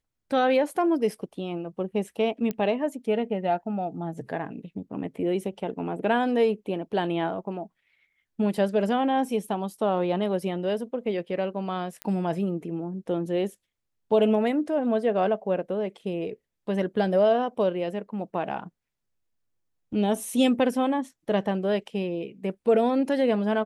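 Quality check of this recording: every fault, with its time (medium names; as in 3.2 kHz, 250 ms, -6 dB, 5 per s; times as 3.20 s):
2.51 s: pop -17 dBFS
12.02 s: pop -17 dBFS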